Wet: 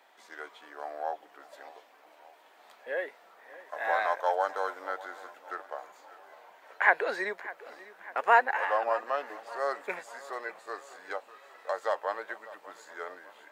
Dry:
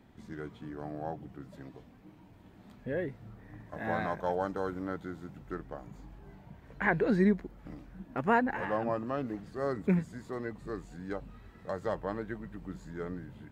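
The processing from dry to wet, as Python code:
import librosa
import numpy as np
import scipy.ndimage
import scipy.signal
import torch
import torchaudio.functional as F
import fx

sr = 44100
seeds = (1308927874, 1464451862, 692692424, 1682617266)

y = scipy.signal.sosfilt(scipy.signal.butter(4, 590.0, 'highpass', fs=sr, output='sos'), x)
y = fx.echo_feedback(y, sr, ms=598, feedback_pct=53, wet_db=-18.0)
y = y * librosa.db_to_amplitude(7.0)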